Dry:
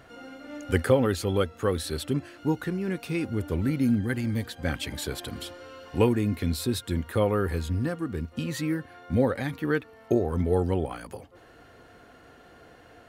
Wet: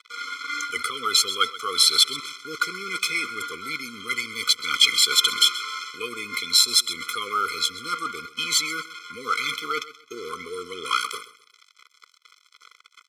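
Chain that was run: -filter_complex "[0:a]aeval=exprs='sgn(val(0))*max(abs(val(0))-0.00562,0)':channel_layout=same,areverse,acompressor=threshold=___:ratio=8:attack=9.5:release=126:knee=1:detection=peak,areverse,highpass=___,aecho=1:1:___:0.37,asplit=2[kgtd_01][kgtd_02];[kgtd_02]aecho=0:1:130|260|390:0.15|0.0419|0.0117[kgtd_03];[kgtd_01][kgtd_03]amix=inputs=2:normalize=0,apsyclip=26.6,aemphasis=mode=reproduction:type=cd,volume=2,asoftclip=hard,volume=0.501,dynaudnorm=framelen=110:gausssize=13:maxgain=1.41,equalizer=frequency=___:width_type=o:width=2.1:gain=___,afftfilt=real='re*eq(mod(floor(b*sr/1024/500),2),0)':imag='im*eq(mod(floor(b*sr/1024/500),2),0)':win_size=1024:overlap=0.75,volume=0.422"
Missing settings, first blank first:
0.0158, 1100, 1.5, 6000, 10.5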